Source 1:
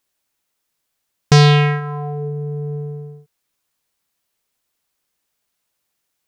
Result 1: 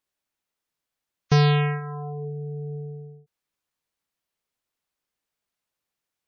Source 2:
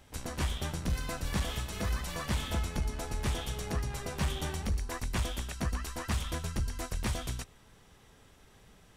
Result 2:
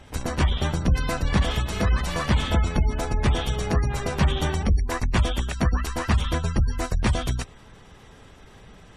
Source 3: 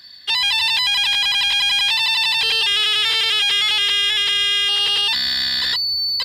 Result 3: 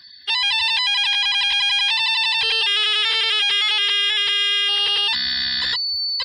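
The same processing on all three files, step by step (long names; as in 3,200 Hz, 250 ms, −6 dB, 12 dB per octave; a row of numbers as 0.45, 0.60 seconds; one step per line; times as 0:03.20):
gate on every frequency bin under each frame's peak −30 dB strong
high-shelf EQ 5,100 Hz −6.5 dB
normalise the peak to −12 dBFS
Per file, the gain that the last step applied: −7.5, +11.0, +0.5 decibels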